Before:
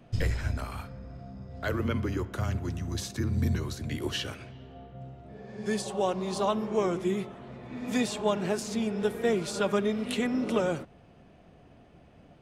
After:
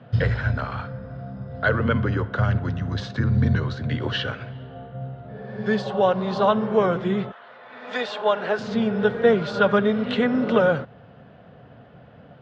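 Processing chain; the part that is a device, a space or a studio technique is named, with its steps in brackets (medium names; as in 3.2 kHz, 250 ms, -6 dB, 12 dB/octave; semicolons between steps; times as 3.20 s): guitar cabinet (cabinet simulation 100–3800 Hz, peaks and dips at 120 Hz +7 dB, 340 Hz -10 dB, 500 Hz +5 dB, 1.5 kHz +7 dB, 2.4 kHz -7 dB); 7.31–8.58 s: high-pass 1.1 kHz -> 370 Hz 12 dB/octave; trim +8 dB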